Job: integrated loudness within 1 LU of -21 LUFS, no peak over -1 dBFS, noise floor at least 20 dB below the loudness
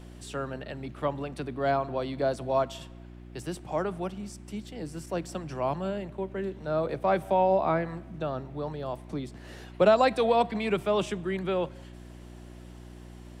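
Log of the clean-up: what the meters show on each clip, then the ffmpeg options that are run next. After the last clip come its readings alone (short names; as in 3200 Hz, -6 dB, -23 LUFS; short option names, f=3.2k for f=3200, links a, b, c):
hum 60 Hz; harmonics up to 360 Hz; hum level -44 dBFS; loudness -29.5 LUFS; peak -9.5 dBFS; loudness target -21.0 LUFS
-> -af "bandreject=f=60:t=h:w=4,bandreject=f=120:t=h:w=4,bandreject=f=180:t=h:w=4,bandreject=f=240:t=h:w=4,bandreject=f=300:t=h:w=4,bandreject=f=360:t=h:w=4"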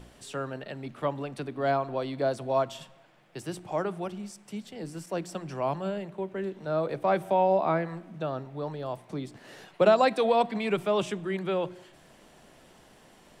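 hum none; loudness -29.5 LUFS; peak -8.5 dBFS; loudness target -21.0 LUFS
-> -af "volume=8.5dB,alimiter=limit=-1dB:level=0:latency=1"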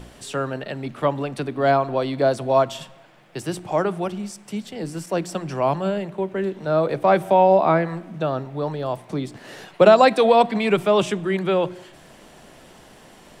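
loudness -21.0 LUFS; peak -1.0 dBFS; noise floor -48 dBFS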